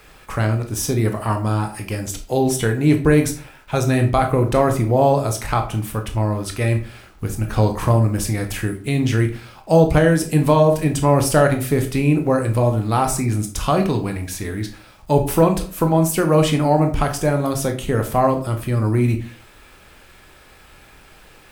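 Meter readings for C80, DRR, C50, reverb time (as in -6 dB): 15.5 dB, 4.5 dB, 11.0 dB, 0.45 s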